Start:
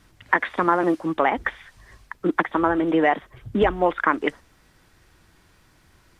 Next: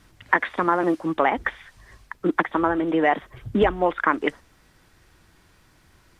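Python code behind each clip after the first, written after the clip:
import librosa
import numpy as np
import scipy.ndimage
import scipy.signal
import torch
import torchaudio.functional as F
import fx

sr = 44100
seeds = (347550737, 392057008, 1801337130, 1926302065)

y = fx.rider(x, sr, range_db=10, speed_s=0.5)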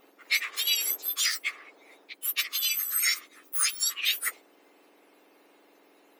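y = fx.octave_mirror(x, sr, pivot_hz=2000.0)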